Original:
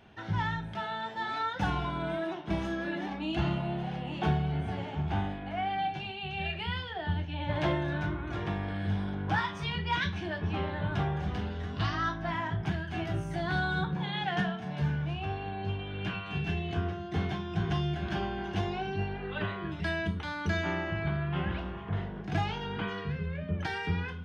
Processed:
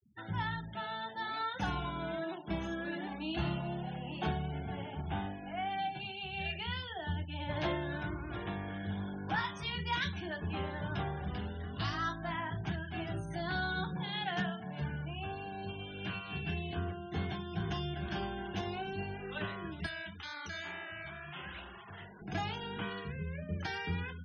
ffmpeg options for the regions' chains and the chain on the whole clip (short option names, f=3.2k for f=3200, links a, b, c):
-filter_complex "[0:a]asettb=1/sr,asplit=3[a][b][c];[a]atrim=end=19.864[d];[b]atrim=start=19.86:end=22.22,asetpts=PTS-STARTPTS,afade=t=in:d=0.004:c=qsin,afade=t=out:st=2.356:d=0.004:c=qsin,tiltshelf=f=750:g=-7.5,acompressor=threshold=-34dB:ratio=2.5:attack=3.2:release=140:knee=1:detection=peak,flanger=delay=6.3:depth=9.6:regen=-19:speed=2:shape=triangular[e];[c]atrim=start=22.216[f];[d][e]acrossfade=d=0.004:c1=hsin:c2=qsin[g];[g][f]acrossfade=d=0.004:c1=qsin:c2=hsin,aemphasis=mode=production:type=50fm,afftfilt=real='re*gte(hypot(re,im),0.00794)':imag='im*gte(hypot(re,im),0.00794)':win_size=1024:overlap=0.75,bandreject=f=50:t=h:w=6,bandreject=f=100:t=h:w=6,bandreject=f=150:t=h:w=6,volume=-4.5dB"